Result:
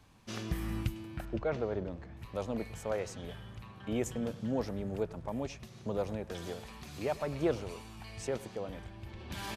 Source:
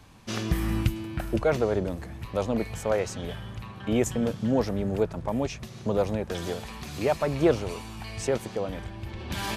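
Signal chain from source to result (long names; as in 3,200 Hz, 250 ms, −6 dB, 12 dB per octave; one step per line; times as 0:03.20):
0:01.25–0:02.17: high-frequency loss of the air 140 metres
far-end echo of a speakerphone 100 ms, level −18 dB
level −9 dB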